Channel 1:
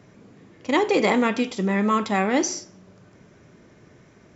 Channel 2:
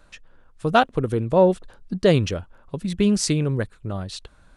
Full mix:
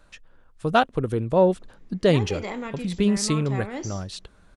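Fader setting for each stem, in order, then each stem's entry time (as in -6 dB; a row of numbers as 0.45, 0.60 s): -12.5, -2.0 dB; 1.40, 0.00 s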